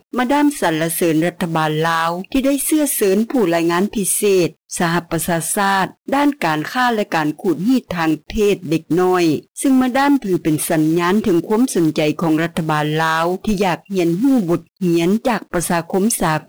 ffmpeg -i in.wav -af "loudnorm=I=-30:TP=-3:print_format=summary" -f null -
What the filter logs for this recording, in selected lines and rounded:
Input Integrated:    -17.1 LUFS
Input True Peak:      -6.5 dBTP
Input LRA:             1.0 LU
Input Threshold:     -27.1 LUFS